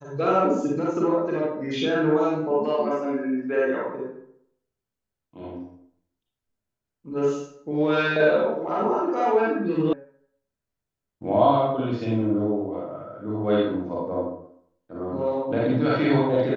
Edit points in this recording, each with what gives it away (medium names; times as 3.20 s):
9.93 s: sound stops dead